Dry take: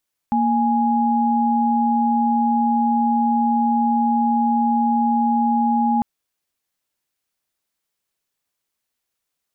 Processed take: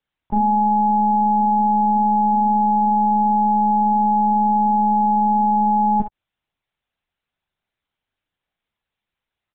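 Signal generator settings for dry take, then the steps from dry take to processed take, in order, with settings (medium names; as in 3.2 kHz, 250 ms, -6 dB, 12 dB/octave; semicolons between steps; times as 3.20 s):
chord A#3/G#5 sine, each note -18 dBFS 5.70 s
early reflections 21 ms -18 dB, 43 ms -4 dB, 58 ms -9 dB; LPC vocoder at 8 kHz pitch kept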